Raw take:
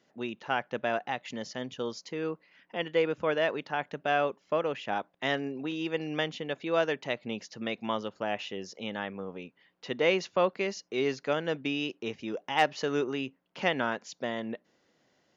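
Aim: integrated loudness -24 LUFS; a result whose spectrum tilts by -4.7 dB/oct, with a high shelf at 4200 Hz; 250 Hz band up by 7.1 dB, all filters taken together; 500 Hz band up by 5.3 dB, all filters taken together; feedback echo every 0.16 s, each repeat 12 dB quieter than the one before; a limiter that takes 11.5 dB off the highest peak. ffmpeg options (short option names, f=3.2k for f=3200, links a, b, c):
-af "equalizer=f=250:t=o:g=7.5,equalizer=f=500:t=o:g=4.5,highshelf=f=4.2k:g=-7.5,alimiter=limit=-20.5dB:level=0:latency=1,aecho=1:1:160|320|480:0.251|0.0628|0.0157,volume=7.5dB"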